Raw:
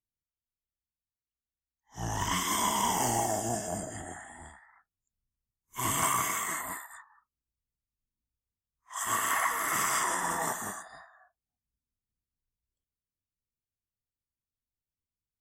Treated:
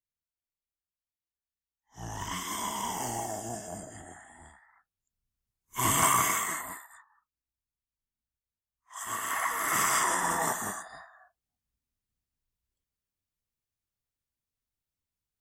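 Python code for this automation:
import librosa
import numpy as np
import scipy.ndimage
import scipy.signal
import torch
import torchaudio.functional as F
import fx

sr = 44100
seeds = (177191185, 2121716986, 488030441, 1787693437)

y = fx.gain(x, sr, db=fx.line((4.24, -5.5), (5.78, 4.0), (6.31, 4.0), (6.83, -5.0), (9.18, -5.0), (9.78, 2.5)))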